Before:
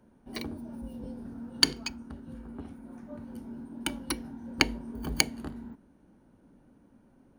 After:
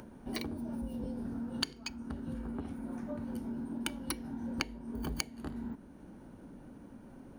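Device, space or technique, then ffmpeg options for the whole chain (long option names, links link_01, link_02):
upward and downward compression: -af "acompressor=mode=upward:threshold=-53dB:ratio=2.5,acompressor=threshold=-43dB:ratio=4,volume=7dB"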